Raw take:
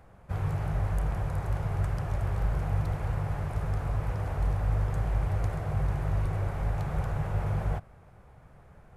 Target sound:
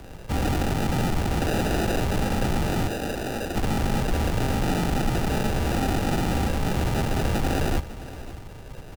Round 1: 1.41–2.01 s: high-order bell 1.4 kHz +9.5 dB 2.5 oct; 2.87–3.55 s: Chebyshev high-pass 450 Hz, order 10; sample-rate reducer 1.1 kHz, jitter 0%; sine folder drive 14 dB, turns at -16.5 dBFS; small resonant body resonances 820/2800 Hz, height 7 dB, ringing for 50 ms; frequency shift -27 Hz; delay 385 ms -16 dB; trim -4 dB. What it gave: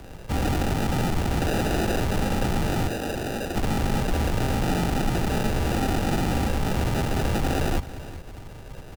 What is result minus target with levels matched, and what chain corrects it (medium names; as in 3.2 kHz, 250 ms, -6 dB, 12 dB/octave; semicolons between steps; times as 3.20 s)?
echo 168 ms early
1.41–2.01 s: high-order bell 1.4 kHz +9.5 dB 2.5 oct; 2.87–3.55 s: Chebyshev high-pass 450 Hz, order 10; sample-rate reducer 1.1 kHz, jitter 0%; sine folder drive 14 dB, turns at -16.5 dBFS; small resonant body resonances 820/2800 Hz, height 7 dB, ringing for 50 ms; frequency shift -27 Hz; delay 553 ms -16 dB; trim -4 dB